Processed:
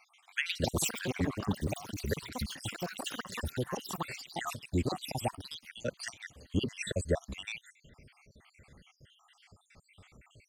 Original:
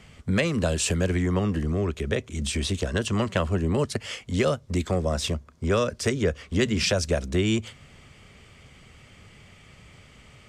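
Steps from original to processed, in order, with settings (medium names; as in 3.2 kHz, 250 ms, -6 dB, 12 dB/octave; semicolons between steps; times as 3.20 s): random holes in the spectrogram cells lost 72%; ever faster or slower copies 226 ms, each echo +6 st, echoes 3; trim -4 dB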